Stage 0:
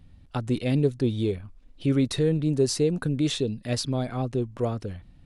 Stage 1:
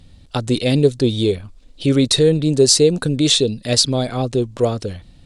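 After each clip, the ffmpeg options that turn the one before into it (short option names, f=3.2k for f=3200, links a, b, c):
-af "equalizer=f=500:t=o:w=1:g=5,equalizer=f=4k:t=o:w=1:g=9,equalizer=f=8k:t=o:w=1:g=10,volume=6dB"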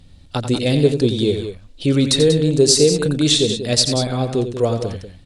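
-af "aecho=1:1:87.46|189.5:0.355|0.316,volume=-1dB"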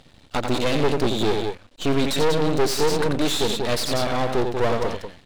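-filter_complex "[0:a]asplit=2[a][b];[b]highpass=f=720:p=1,volume=25dB,asoftclip=type=tanh:threshold=-1dB[c];[a][c]amix=inputs=2:normalize=0,lowpass=f=1.8k:p=1,volume=-6dB,aeval=exprs='max(val(0),0)':c=same,volume=-6dB"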